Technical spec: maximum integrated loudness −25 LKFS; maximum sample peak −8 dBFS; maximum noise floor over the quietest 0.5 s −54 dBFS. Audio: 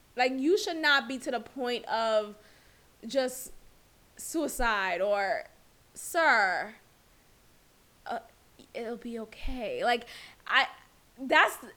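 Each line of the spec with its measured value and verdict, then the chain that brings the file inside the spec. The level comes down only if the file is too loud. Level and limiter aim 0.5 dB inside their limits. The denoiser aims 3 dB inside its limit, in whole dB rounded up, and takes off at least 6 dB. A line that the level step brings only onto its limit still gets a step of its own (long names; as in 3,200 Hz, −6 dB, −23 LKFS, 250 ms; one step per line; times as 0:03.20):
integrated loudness −29.0 LKFS: in spec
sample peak −7.5 dBFS: out of spec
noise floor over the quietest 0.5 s −62 dBFS: in spec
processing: brickwall limiter −8.5 dBFS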